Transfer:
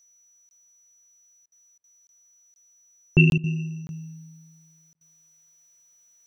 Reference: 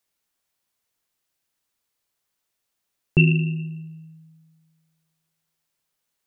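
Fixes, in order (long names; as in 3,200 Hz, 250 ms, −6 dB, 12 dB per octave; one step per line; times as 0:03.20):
notch filter 5,900 Hz, Q 30
repair the gap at 0:00.49/0:02.07/0:02.54/0:03.30/0:03.87/0:04.93, 21 ms
repair the gap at 0:01.46/0:01.78/0:03.38/0:04.95, 58 ms
level 0 dB, from 0:03.89 −5 dB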